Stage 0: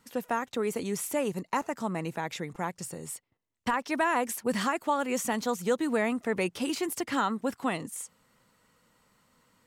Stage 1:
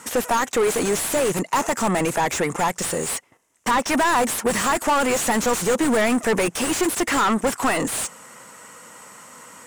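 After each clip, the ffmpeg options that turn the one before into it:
-filter_complex "[0:a]aexciter=amount=8.6:drive=8.4:freq=6.3k,adynamicsmooth=sensitivity=3.5:basefreq=6.5k,asplit=2[a][b];[b]highpass=f=720:p=1,volume=33dB,asoftclip=type=tanh:threshold=-10.5dB[c];[a][c]amix=inputs=2:normalize=0,lowpass=f=2.2k:p=1,volume=-6dB"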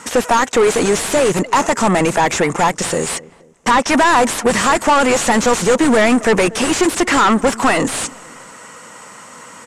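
-filter_complex "[0:a]lowpass=7.9k,asplit=2[a][b];[b]adelay=237,lowpass=f=910:p=1,volume=-19dB,asplit=2[c][d];[d]adelay=237,lowpass=f=910:p=1,volume=0.4,asplit=2[e][f];[f]adelay=237,lowpass=f=910:p=1,volume=0.4[g];[a][c][e][g]amix=inputs=4:normalize=0,volume=7dB"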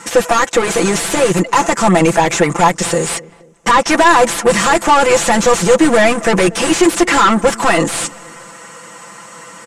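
-af "aecho=1:1:5.9:0.8"

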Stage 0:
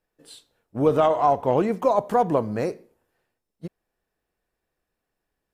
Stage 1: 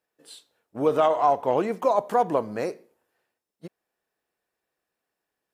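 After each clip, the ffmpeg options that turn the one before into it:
-af "highpass=f=380:p=1"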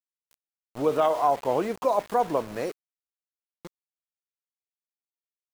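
-af "aeval=exprs='val(0)*gte(abs(val(0)),0.0178)':c=same,volume=-2dB"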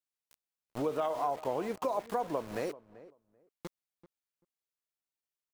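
-filter_complex "[0:a]acompressor=threshold=-32dB:ratio=3,asplit=2[a][b];[b]adelay=387,lowpass=f=1.2k:p=1,volume=-17dB,asplit=2[c][d];[d]adelay=387,lowpass=f=1.2k:p=1,volume=0.18[e];[a][c][e]amix=inputs=3:normalize=0"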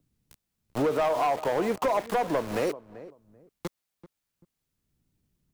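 -filter_complex "[0:a]acrossover=split=230[a][b];[a]acompressor=mode=upward:threshold=-58dB:ratio=2.5[c];[c][b]amix=inputs=2:normalize=0,volume=29.5dB,asoftclip=hard,volume=-29.5dB,volume=9dB"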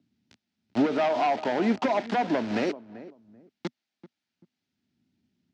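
-af "highpass=f=100:w=0.5412,highpass=f=100:w=1.3066,equalizer=f=100:t=q:w=4:g=-4,equalizer=f=140:t=q:w=4:g=-10,equalizer=f=240:t=q:w=4:g=8,equalizer=f=490:t=q:w=4:g=-10,equalizer=f=1.1k:t=q:w=4:g=-10,lowpass=f=5.3k:w=0.5412,lowpass=f=5.3k:w=1.3066,volume=3.5dB"

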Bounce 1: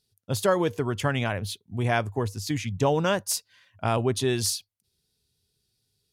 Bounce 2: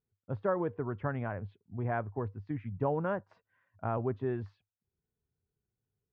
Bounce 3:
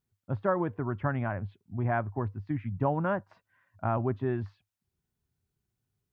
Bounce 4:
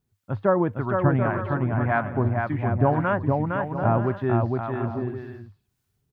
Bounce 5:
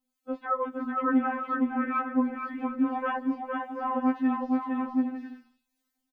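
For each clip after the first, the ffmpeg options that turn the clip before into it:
-af "lowpass=f=1.6k:w=0.5412,lowpass=f=1.6k:w=1.3066,volume=-8dB"
-af "equalizer=f=460:w=4.9:g=-11,volume=5dB"
-filter_complex "[0:a]aecho=1:1:460|736|901.6|1001|1061:0.631|0.398|0.251|0.158|0.1,acrossover=split=840[a][b];[a]aeval=exprs='val(0)*(1-0.5/2+0.5/2*cos(2*PI*1.8*n/s))':c=same[c];[b]aeval=exprs='val(0)*(1-0.5/2-0.5/2*cos(2*PI*1.8*n/s))':c=same[d];[c][d]amix=inputs=2:normalize=0,volume=8.5dB"
-af "aecho=1:1:157:0.0708,afftfilt=real='re*3.46*eq(mod(b,12),0)':imag='im*3.46*eq(mod(b,12),0)':win_size=2048:overlap=0.75"

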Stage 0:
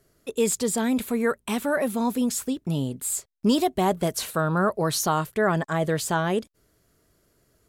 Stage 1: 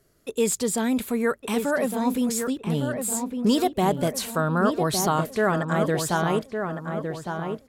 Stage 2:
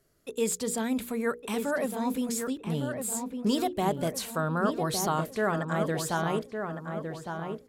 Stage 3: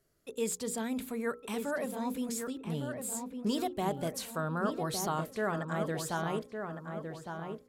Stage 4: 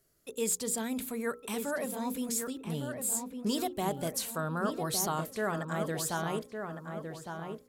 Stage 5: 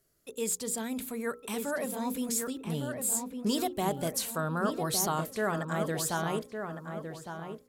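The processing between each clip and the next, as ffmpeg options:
-filter_complex "[0:a]asplit=2[a][b];[b]adelay=1159,lowpass=f=2k:p=1,volume=-6dB,asplit=2[c][d];[d]adelay=1159,lowpass=f=2k:p=1,volume=0.47,asplit=2[e][f];[f]adelay=1159,lowpass=f=2k:p=1,volume=0.47,asplit=2[g][h];[h]adelay=1159,lowpass=f=2k:p=1,volume=0.47,asplit=2[i][j];[j]adelay=1159,lowpass=f=2k:p=1,volume=0.47,asplit=2[k][l];[l]adelay=1159,lowpass=f=2k:p=1,volume=0.47[m];[a][c][e][g][i][k][m]amix=inputs=7:normalize=0"
-af "bandreject=f=60:t=h:w=6,bandreject=f=120:t=h:w=6,bandreject=f=180:t=h:w=6,bandreject=f=240:t=h:w=6,bandreject=f=300:t=h:w=6,bandreject=f=360:t=h:w=6,bandreject=f=420:t=h:w=6,bandreject=f=480:t=h:w=6,volume=-5dB"
-af "bandreject=f=264.3:t=h:w=4,bandreject=f=528.6:t=h:w=4,bandreject=f=792.9:t=h:w=4,bandreject=f=1.0572k:t=h:w=4,bandreject=f=1.3215k:t=h:w=4,volume=-5dB"
-af "highshelf=f=5.3k:g=8.5"
-af "dynaudnorm=f=630:g=5:m=3dB,volume=-1dB"

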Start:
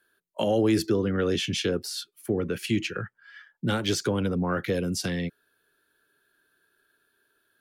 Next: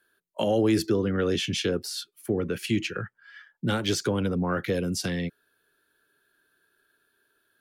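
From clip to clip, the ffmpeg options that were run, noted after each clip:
-af anull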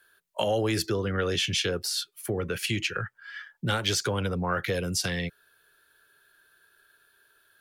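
-filter_complex "[0:a]equalizer=f=260:t=o:w=1.5:g=-12,asplit=2[a][b];[b]acompressor=threshold=-38dB:ratio=6,volume=3dB[c];[a][c]amix=inputs=2:normalize=0"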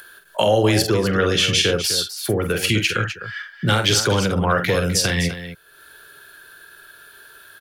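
-af "aecho=1:1:46.65|253.6:0.447|0.282,acompressor=mode=upward:threshold=-44dB:ratio=2.5,volume=8.5dB"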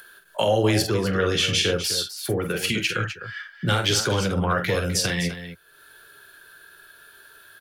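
-af "flanger=delay=4.3:depth=9.2:regen=-54:speed=0.37:shape=triangular"

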